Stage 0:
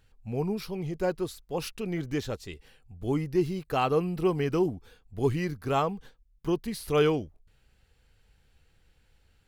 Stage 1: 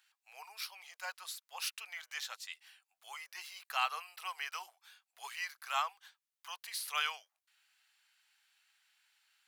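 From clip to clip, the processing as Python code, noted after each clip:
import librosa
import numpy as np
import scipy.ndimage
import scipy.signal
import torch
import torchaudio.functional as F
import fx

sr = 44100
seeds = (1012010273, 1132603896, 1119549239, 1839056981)

y = scipy.signal.sosfilt(scipy.signal.bessel(8, 1500.0, 'highpass', norm='mag', fs=sr, output='sos'), x)
y = y * 10.0 ** (1.5 / 20.0)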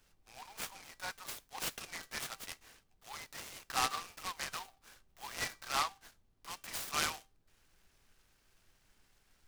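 y = fx.dmg_noise_colour(x, sr, seeds[0], colour='brown', level_db=-71.0)
y = fx.comb_fb(y, sr, f0_hz=390.0, decay_s=0.28, harmonics='all', damping=0.0, mix_pct=60)
y = fx.noise_mod_delay(y, sr, seeds[1], noise_hz=2800.0, depth_ms=0.076)
y = y * 10.0 ** (7.5 / 20.0)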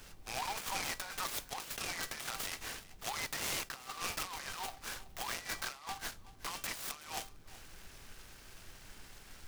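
y = fx.over_compress(x, sr, threshold_db=-51.0, ratio=-1.0)
y = 10.0 ** (-37.5 / 20.0) * (np.abs((y / 10.0 ** (-37.5 / 20.0) + 3.0) % 4.0 - 2.0) - 1.0)
y = y + 10.0 ** (-18.5 / 20.0) * np.pad(y, (int(376 * sr / 1000.0), 0))[:len(y)]
y = y * 10.0 ** (8.5 / 20.0)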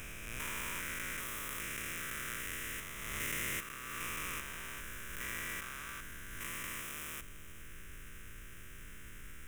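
y = fx.spec_steps(x, sr, hold_ms=400)
y = fx.fixed_phaser(y, sr, hz=1900.0, stages=4)
y = fx.pre_swell(y, sr, db_per_s=29.0)
y = y * 10.0 ** (6.0 / 20.0)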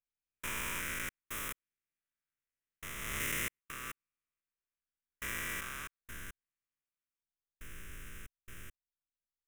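y = fx.step_gate(x, sr, bpm=69, pattern='..xxx.x....', floor_db=-60.0, edge_ms=4.5)
y = y * 10.0 ** (2.0 / 20.0)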